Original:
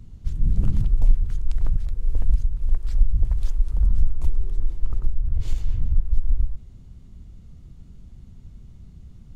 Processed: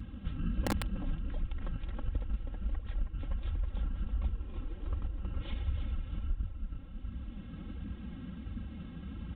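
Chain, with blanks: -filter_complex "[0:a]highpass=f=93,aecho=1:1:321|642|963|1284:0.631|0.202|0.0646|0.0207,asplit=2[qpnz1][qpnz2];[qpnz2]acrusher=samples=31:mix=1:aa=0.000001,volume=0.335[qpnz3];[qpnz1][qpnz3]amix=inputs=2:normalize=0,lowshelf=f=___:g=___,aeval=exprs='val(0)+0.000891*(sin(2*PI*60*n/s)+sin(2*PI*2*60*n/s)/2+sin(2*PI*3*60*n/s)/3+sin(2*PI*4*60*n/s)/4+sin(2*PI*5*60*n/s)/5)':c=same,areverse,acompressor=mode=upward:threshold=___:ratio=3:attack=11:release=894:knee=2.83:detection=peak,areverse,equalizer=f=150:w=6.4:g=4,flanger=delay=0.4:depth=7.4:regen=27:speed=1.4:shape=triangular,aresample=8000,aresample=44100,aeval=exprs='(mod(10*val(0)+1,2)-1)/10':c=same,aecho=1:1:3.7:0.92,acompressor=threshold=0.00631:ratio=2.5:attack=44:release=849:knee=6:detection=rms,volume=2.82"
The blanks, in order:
470, -3, 0.01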